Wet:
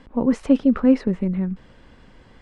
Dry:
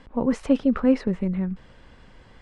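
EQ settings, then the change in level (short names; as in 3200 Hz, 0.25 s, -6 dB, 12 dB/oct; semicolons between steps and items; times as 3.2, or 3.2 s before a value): bell 270 Hz +4 dB 1.3 oct; 0.0 dB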